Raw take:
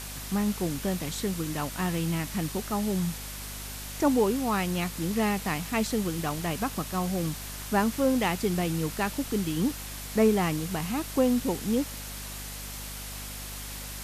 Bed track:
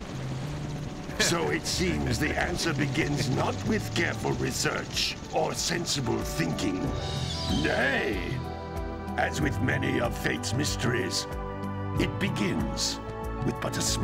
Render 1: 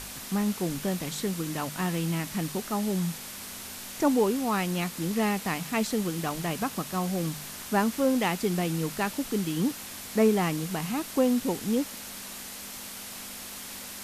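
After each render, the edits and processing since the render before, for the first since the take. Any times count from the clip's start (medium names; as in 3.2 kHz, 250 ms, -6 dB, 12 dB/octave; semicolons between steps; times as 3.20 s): de-hum 50 Hz, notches 3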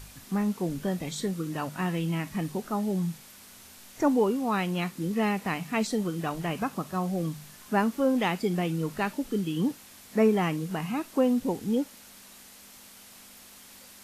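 noise print and reduce 10 dB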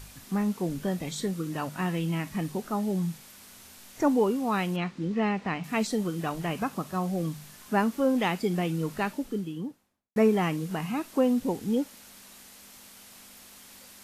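4.76–5.64 s: distance through air 130 m; 8.94–10.16 s: studio fade out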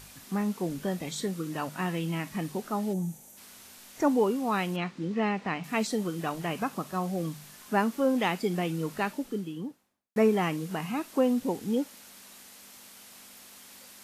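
2.93–3.37 s: time-frequency box 940–5700 Hz -12 dB; bass shelf 100 Hz -11 dB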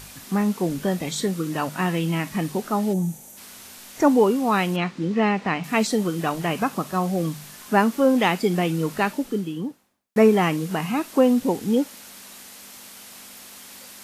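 trim +7.5 dB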